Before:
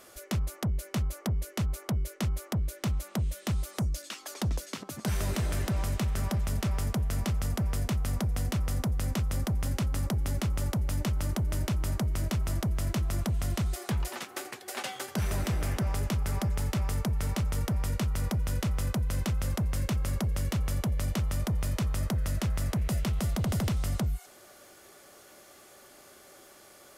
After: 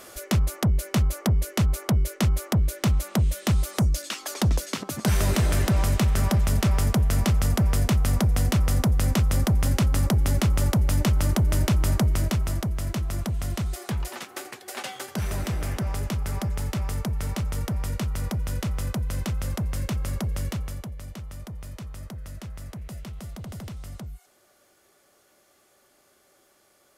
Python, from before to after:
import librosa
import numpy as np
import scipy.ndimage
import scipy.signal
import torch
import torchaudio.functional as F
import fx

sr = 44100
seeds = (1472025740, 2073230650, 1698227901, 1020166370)

y = fx.gain(x, sr, db=fx.line((12.05, 8.0), (12.73, 1.5), (20.46, 1.5), (20.96, -8.5)))